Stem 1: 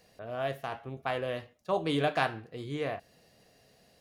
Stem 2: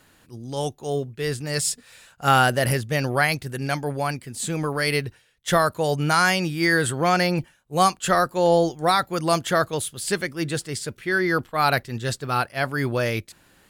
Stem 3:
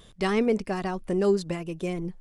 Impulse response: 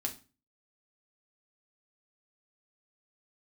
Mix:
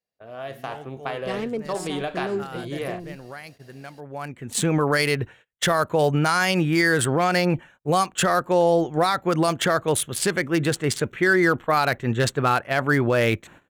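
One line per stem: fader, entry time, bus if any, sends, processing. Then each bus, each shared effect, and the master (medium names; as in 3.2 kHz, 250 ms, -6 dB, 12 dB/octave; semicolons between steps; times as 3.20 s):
-1.5 dB, 0.00 s, bus A, no send, compression 3:1, threshold -34 dBFS, peak gain reduction 9 dB
+2.0 dB, 0.15 s, bus A, no send, local Wiener filter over 9 samples; compression 12:1, threshold -23 dBFS, peak gain reduction 11 dB; auto duck -21 dB, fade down 0.20 s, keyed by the first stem
-4.0 dB, 1.05 s, no bus, no send, local Wiener filter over 25 samples
bus A: 0.0 dB, level rider gain up to 8.5 dB; peak limiter -10 dBFS, peak gain reduction 5.5 dB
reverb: none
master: gate -45 dBFS, range -27 dB; bass shelf 110 Hz -8 dB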